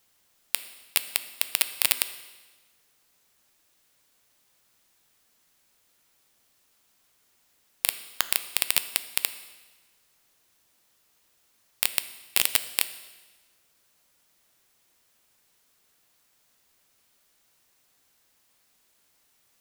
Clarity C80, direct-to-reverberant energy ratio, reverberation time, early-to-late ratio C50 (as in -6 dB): 15.0 dB, 11.5 dB, 1.3 s, 13.0 dB